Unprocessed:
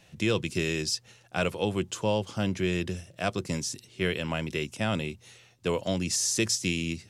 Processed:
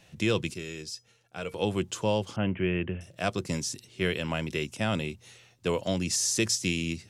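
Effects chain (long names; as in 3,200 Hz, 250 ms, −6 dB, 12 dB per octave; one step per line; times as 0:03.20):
0:00.54–0:01.54: tuned comb filter 460 Hz, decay 0.17 s, harmonics odd, mix 70%
0:02.36–0:03.01: Butterworth low-pass 3,100 Hz 96 dB per octave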